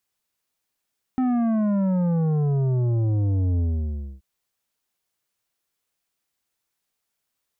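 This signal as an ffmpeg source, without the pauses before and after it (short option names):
-f lavfi -i "aevalsrc='0.1*clip((3.03-t)/0.62,0,1)*tanh(2.99*sin(2*PI*260*3.03/log(65/260)*(exp(log(65/260)*t/3.03)-1)))/tanh(2.99)':d=3.03:s=44100"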